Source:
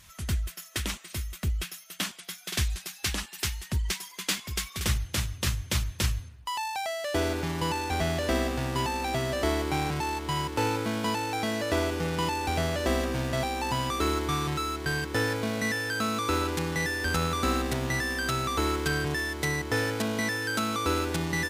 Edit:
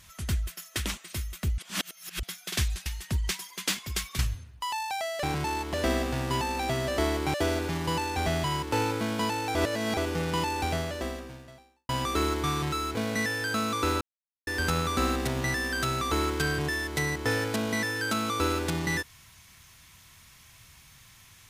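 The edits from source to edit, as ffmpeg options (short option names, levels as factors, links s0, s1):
-filter_complex "[0:a]asplit=15[s0][s1][s2][s3][s4][s5][s6][s7][s8][s9][s10][s11][s12][s13][s14];[s0]atrim=end=1.582[s15];[s1]atrim=start=1.578:end=2.232,asetpts=PTS-STARTPTS,areverse[s16];[s2]atrim=start=2.228:end=2.862[s17];[s3]atrim=start=3.468:end=4.802[s18];[s4]atrim=start=6.038:end=7.082[s19];[s5]atrim=start=9.788:end=10.292[s20];[s6]atrim=start=8.178:end=9.792[s21];[s7]atrim=start=7.078:end=8.182[s22];[s8]atrim=start=10.288:end=11.402[s23];[s9]atrim=start=11.398:end=11.822,asetpts=PTS-STARTPTS,areverse[s24];[s10]atrim=start=11.818:end=13.74,asetpts=PTS-STARTPTS,afade=t=out:st=0.652:d=1.27:c=qua[s25];[s11]atrim=start=13.74:end=14.802,asetpts=PTS-STARTPTS,afade=t=in:d=0.004:c=hsin[s26];[s12]atrim=start=15.408:end=16.47,asetpts=PTS-STARTPTS,afade=t=out:st=1.058:d=0.004:c=hsin[s27];[s13]atrim=start=16.47:end=16.93,asetpts=PTS-STARTPTS,volume=0[s28];[s14]atrim=start=16.93,asetpts=PTS-STARTPTS,afade=t=in:d=0.004:c=hsin[s29];[s15][s16]acrossfade=d=0.004:c1=hsin:c2=hsin[s30];[s30][s17]acrossfade=d=0.004:c1=hsin:c2=hsin[s31];[s31][s18]acrossfade=d=0.004:c1=hsin:c2=hsin[s32];[s32][s19]acrossfade=d=0.004:c1=hsin:c2=hsin[s33];[s33][s20]acrossfade=d=0.004:c1=hsin:c2=hsin[s34];[s34][s21]acrossfade=d=0.004:c1=hsin:c2=hsin[s35];[s35][s22]acrossfade=d=0.004:c1=hsin:c2=hsin[s36];[s36][s23]acrossfade=d=0.004:c1=hsin:c2=hsin[s37];[s37][s24]acrossfade=d=0.004:c1=hsin:c2=hsin[s38];[s25][s26]concat=n=2:v=0:a=1[s39];[s38][s39]acrossfade=d=0.004:c1=hsin:c2=hsin[s40];[s27][s28][s29]concat=n=3:v=0:a=1[s41];[s40][s41]acrossfade=d=0.004:c1=hsin:c2=hsin"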